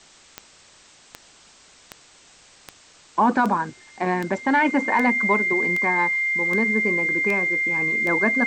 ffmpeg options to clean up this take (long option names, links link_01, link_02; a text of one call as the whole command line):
ffmpeg -i in.wav -af "adeclick=threshold=4,bandreject=frequency=2100:width=30,afwtdn=0.004" out.wav